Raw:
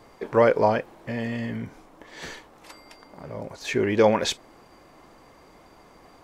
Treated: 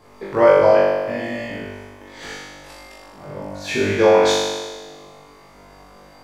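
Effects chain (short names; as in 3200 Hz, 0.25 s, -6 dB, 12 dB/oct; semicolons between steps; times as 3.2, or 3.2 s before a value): vibrato 14 Hz 8.2 cents; flutter echo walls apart 3.5 m, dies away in 1.4 s; gain -1 dB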